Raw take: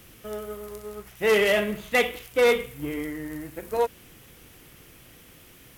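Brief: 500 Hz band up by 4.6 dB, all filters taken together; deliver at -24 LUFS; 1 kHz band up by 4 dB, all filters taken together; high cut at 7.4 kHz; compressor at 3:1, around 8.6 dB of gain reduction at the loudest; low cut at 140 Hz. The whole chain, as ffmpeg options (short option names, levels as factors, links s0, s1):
-af "highpass=140,lowpass=7400,equalizer=f=500:t=o:g=4.5,equalizer=f=1000:t=o:g=3.5,acompressor=threshold=0.0708:ratio=3,volume=1.78"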